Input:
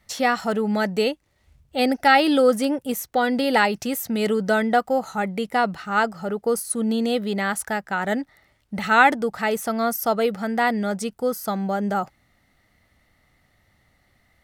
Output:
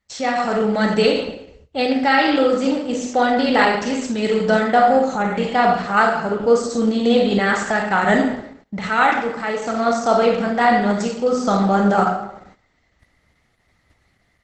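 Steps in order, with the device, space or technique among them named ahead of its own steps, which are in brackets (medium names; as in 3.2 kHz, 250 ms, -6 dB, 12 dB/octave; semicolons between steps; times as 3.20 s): speakerphone in a meeting room (reverberation RT60 0.85 s, pre-delay 25 ms, DRR 0 dB; level rider gain up to 12.5 dB; gate -43 dBFS, range -12 dB; trim -2 dB; Opus 12 kbps 48 kHz)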